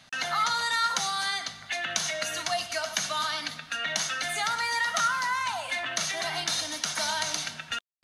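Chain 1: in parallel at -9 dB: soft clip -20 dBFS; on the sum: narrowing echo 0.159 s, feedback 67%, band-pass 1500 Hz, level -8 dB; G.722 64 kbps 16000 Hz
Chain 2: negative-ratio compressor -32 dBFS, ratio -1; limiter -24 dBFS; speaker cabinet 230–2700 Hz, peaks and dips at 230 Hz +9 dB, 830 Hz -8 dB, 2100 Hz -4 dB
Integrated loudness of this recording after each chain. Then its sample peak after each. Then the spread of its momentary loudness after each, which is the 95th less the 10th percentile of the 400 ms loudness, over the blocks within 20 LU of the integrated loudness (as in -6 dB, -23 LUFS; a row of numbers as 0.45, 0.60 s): -25.5, -37.0 LUFS; -10.0, -25.0 dBFS; 6, 5 LU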